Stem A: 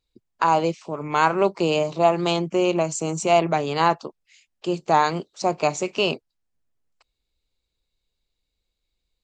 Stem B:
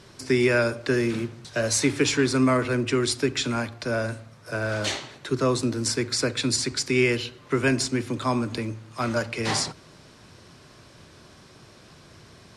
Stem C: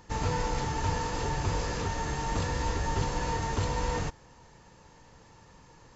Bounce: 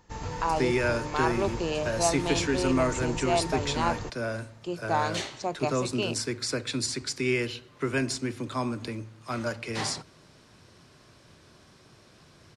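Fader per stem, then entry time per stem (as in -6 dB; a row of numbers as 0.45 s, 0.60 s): -9.0 dB, -5.5 dB, -6.0 dB; 0.00 s, 0.30 s, 0.00 s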